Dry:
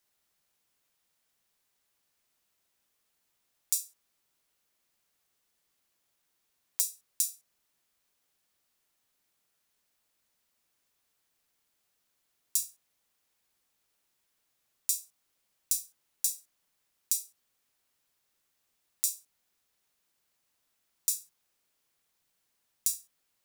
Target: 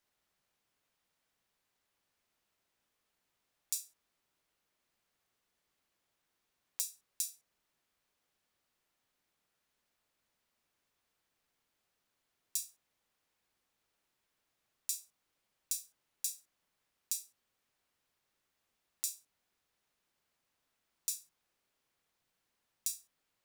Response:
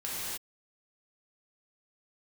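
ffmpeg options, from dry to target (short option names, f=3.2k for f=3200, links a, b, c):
-af "highshelf=f=4.8k:g=-9.5"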